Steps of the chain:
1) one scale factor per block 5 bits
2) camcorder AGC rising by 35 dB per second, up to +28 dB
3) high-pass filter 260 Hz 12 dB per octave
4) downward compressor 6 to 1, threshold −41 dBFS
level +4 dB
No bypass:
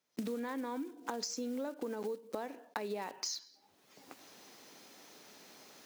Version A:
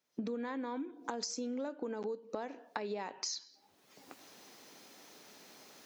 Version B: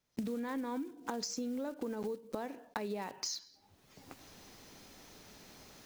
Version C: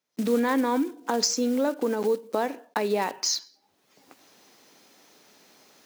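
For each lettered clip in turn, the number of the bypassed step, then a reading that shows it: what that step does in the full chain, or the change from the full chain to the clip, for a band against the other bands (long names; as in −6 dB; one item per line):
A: 1, distortion level −24 dB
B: 3, 250 Hz band +2.0 dB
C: 4, average gain reduction 8.5 dB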